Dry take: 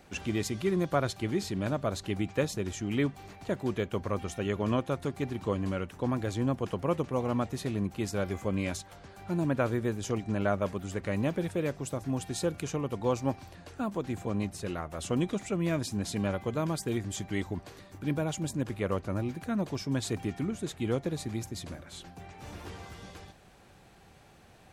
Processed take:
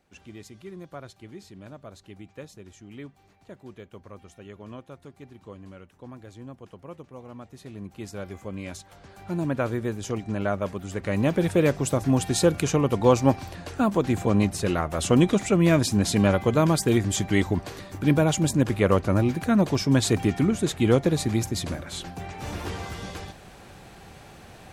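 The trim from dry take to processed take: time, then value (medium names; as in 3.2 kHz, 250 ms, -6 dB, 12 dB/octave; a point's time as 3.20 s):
7.39 s -12.5 dB
8.03 s -4.5 dB
8.61 s -4.5 dB
9.12 s +2 dB
10.85 s +2 dB
11.57 s +10.5 dB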